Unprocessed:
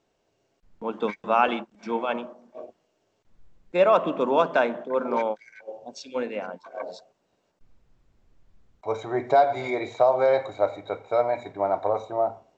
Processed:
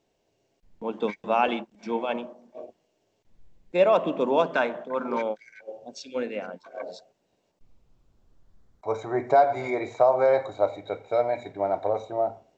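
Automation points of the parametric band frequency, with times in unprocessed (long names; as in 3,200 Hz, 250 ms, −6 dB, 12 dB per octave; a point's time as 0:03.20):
parametric band −7.5 dB 0.66 octaves
0:04.48 1,300 Hz
0:04.71 230 Hz
0:05.29 960 Hz
0:06.80 960 Hz
0:09.21 3,500 Hz
0:10.35 3,500 Hz
0:10.86 1,100 Hz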